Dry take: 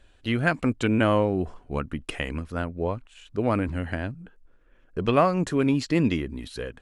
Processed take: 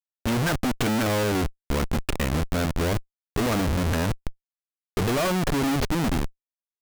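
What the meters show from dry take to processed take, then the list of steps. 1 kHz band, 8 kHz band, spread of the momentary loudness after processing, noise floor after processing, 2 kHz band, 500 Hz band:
-0.5 dB, +12.0 dB, 7 LU, under -85 dBFS, +0.5 dB, -1.5 dB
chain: ending faded out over 1.94 s; Schmitt trigger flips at -33.5 dBFS; gain +4.5 dB

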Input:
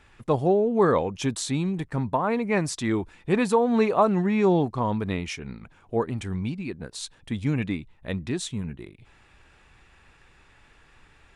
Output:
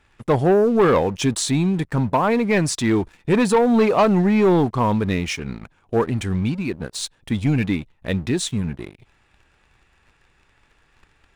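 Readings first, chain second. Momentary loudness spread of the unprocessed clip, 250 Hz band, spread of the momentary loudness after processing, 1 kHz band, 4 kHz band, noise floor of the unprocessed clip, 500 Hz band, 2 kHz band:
13 LU, +6.0 dB, 11 LU, +4.5 dB, +7.5 dB, -57 dBFS, +5.0 dB, +6.0 dB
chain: sample leveller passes 2

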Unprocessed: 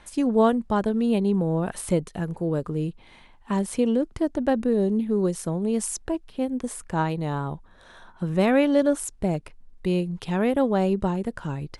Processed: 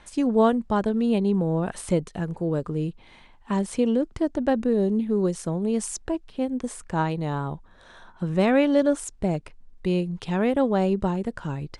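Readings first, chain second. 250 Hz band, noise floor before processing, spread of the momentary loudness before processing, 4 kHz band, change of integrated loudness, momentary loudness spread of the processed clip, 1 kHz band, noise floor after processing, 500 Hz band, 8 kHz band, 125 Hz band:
0.0 dB, -52 dBFS, 10 LU, 0.0 dB, 0.0 dB, 10 LU, 0.0 dB, -52 dBFS, 0.0 dB, -2.5 dB, 0.0 dB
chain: LPF 9200 Hz 24 dB/oct

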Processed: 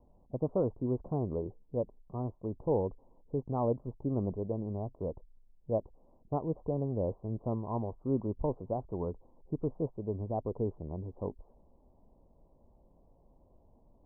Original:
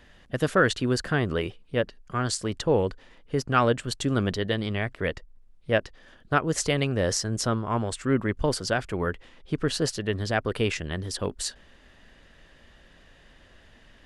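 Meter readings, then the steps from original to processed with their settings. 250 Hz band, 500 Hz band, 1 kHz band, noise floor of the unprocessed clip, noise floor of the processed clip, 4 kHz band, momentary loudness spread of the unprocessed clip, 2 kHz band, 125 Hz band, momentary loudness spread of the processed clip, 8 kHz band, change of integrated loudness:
-7.0 dB, -7.0 dB, -11.5 dB, -56 dBFS, -64 dBFS, under -40 dB, 9 LU, under -40 dB, -7.0 dB, 8 LU, under -40 dB, -8.5 dB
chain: steep low-pass 1000 Hz 72 dB/oct; gain -7 dB

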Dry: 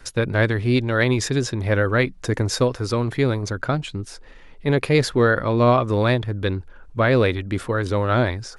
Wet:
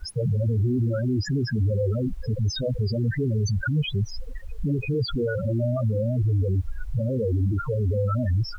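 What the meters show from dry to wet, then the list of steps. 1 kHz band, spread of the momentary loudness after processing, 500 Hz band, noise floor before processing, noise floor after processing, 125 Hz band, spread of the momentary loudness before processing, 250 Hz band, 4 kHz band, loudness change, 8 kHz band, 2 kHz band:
-15.5 dB, 5 LU, -8.0 dB, -43 dBFS, -35 dBFS, 0.0 dB, 8 LU, -5.0 dB, -6.0 dB, -4.5 dB, -10.0 dB, -13.5 dB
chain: fuzz box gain 41 dB, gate -44 dBFS; loudest bins only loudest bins 4; added noise pink -56 dBFS; gain -6 dB

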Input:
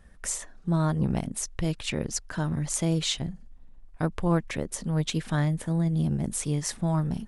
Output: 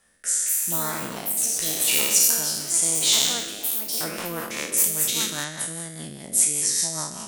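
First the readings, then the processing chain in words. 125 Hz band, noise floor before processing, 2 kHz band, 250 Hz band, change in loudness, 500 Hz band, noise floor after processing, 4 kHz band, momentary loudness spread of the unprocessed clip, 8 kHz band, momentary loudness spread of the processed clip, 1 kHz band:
-14.5 dB, -50 dBFS, +7.0 dB, -9.0 dB, +7.5 dB, -1.5 dB, -39 dBFS, +11.0 dB, 7 LU, +14.5 dB, 12 LU, +1.0 dB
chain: spectral trails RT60 1.63 s; low shelf 130 Hz -8.5 dB; echoes that change speed 0.293 s, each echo +6 st, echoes 3, each echo -6 dB; RIAA curve recording; rotary speaker horn 0.85 Hz, later 5 Hz, at 3.2; gain -1 dB

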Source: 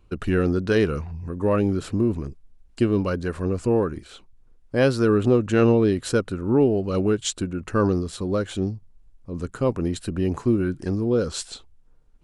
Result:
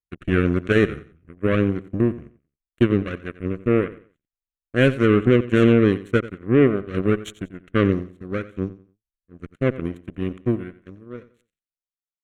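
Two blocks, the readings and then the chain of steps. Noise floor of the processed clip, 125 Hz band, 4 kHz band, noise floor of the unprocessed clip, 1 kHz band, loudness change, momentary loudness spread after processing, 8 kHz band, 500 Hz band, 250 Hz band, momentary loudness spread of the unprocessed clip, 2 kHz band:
under -85 dBFS, +1.0 dB, -1.5 dB, -54 dBFS, -1.0 dB, +1.5 dB, 15 LU, under -10 dB, +0.5 dB, +1.5 dB, 12 LU, +5.0 dB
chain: ending faded out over 2.24 s; added harmonics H 3 -35 dB, 5 -21 dB, 6 -36 dB, 7 -14 dB, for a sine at -7 dBFS; air absorption 58 m; fixed phaser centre 2100 Hz, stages 4; on a send: feedback echo 90 ms, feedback 28%, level -16.5 dB; on the sum: gain +4.5 dB

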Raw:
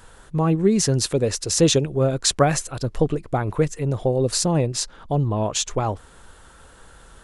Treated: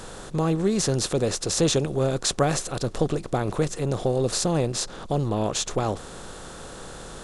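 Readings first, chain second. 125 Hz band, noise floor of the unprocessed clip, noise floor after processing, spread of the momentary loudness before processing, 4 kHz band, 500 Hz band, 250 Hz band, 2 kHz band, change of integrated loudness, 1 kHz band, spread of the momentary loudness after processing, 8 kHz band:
-4.0 dB, -48 dBFS, -40 dBFS, 7 LU, -3.0 dB, -3.0 dB, -3.5 dB, -2.0 dB, -3.5 dB, -3.0 dB, 17 LU, -3.5 dB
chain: per-bin compression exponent 0.6; gain -6.5 dB

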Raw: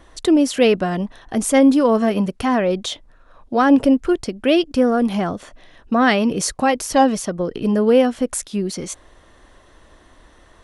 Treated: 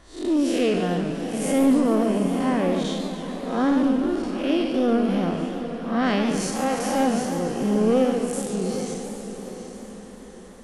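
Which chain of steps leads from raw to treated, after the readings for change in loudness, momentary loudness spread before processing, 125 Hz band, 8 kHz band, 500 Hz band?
-5.0 dB, 11 LU, -1.5 dB, -6.5 dB, -5.5 dB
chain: time blur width 0.168 s; soft clip -12.5 dBFS, distortion -17 dB; diffused feedback echo 0.804 s, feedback 43%, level -10.5 dB; warbling echo 0.144 s, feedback 68%, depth 217 cents, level -8 dB; gain -1.5 dB

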